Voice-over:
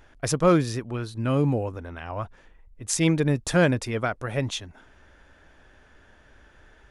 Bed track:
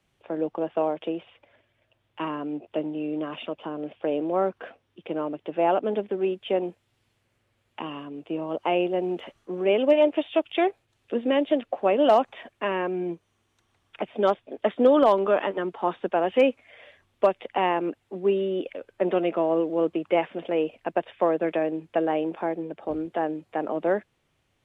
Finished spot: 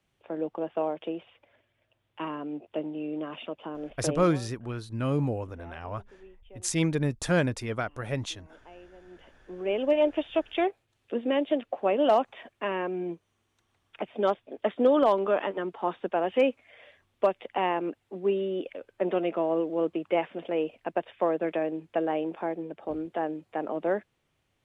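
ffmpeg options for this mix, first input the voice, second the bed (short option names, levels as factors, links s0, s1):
-filter_complex "[0:a]adelay=3750,volume=0.596[s0];[1:a]volume=8.91,afade=t=out:st=4.04:d=0.38:silence=0.0749894,afade=t=in:st=9.05:d=1.01:silence=0.0707946[s1];[s0][s1]amix=inputs=2:normalize=0"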